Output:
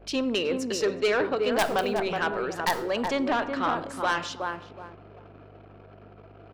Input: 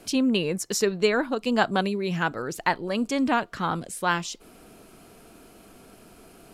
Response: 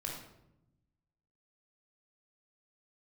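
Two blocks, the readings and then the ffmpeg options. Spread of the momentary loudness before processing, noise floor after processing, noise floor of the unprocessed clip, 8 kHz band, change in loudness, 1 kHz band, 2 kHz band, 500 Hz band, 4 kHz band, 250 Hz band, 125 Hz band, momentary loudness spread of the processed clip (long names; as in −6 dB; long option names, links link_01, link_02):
6 LU, −50 dBFS, −52 dBFS, −5.5 dB, −1.5 dB, −0.5 dB, −1.0 dB, +1.0 dB, −0.5 dB, −4.5 dB, −8.0 dB, 9 LU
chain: -filter_complex "[0:a]acrossover=split=280 4900:gain=0.0891 1 0.141[link_01][link_02][link_03];[link_01][link_02][link_03]amix=inputs=3:normalize=0,aeval=exprs='(mod(2.99*val(0)+1,2)-1)/2.99':channel_layout=same,aeval=exprs='val(0)+0.002*(sin(2*PI*50*n/s)+sin(2*PI*2*50*n/s)/2+sin(2*PI*3*50*n/s)/3+sin(2*PI*4*50*n/s)/4+sin(2*PI*5*50*n/s)/5)':channel_layout=same,asplit=2[link_04][link_05];[link_05]adelay=371,lowpass=frequency=850:poles=1,volume=-4.5dB,asplit=2[link_06][link_07];[link_07]adelay=371,lowpass=frequency=850:poles=1,volume=0.31,asplit=2[link_08][link_09];[link_09]adelay=371,lowpass=frequency=850:poles=1,volume=0.31,asplit=2[link_10][link_11];[link_11]adelay=371,lowpass=frequency=850:poles=1,volume=0.31[link_12];[link_04][link_06][link_08][link_10][link_12]amix=inputs=5:normalize=0,asplit=2[link_13][link_14];[1:a]atrim=start_sample=2205[link_15];[link_14][link_15]afir=irnorm=-1:irlink=0,volume=-12dB[link_16];[link_13][link_16]amix=inputs=2:normalize=0,asoftclip=type=tanh:threshold=-19dB,anlmdn=0.00631,volume=1.5dB"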